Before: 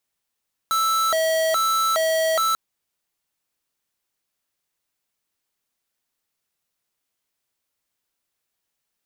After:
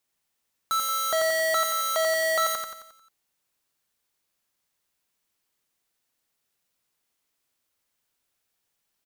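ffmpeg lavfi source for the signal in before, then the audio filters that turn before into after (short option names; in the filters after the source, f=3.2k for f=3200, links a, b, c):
-f lavfi -i "aevalsrc='0.0944*(2*lt(mod((982*t+338/1.2*(0.5-abs(mod(1.2*t,1)-0.5))),1),0.5)-1)':d=1.84:s=44100"
-filter_complex "[0:a]alimiter=limit=-24dB:level=0:latency=1,asplit=2[a][b];[b]aecho=0:1:89|178|267|356|445|534:0.631|0.309|0.151|0.0742|0.0364|0.0178[c];[a][c]amix=inputs=2:normalize=0"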